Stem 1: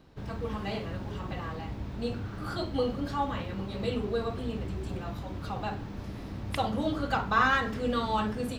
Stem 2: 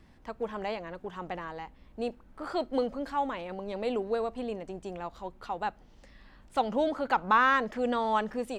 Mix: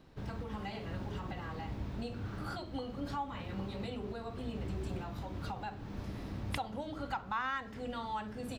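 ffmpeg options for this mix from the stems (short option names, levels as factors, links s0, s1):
-filter_complex "[0:a]volume=0.75[s0];[1:a]equalizer=f=180:w=0.46:g=-9.5,volume=-1,adelay=5.2,volume=0.266,asplit=2[s1][s2];[s2]apad=whole_len=378711[s3];[s0][s3]sidechaincompress=threshold=0.00282:ratio=8:attack=35:release=320[s4];[s4][s1]amix=inputs=2:normalize=0"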